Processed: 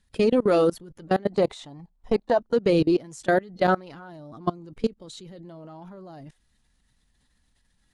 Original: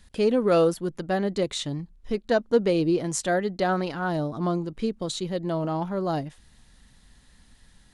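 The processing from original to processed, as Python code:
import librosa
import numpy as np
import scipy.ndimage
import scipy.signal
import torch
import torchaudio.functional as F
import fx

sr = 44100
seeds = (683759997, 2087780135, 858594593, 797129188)

y = fx.spec_quant(x, sr, step_db=15)
y = fx.peak_eq(y, sr, hz=810.0, db=14.5, octaves=0.98, at=(1.32, 2.38))
y = fx.level_steps(y, sr, step_db=24)
y = y * librosa.db_to_amplitude(5.5)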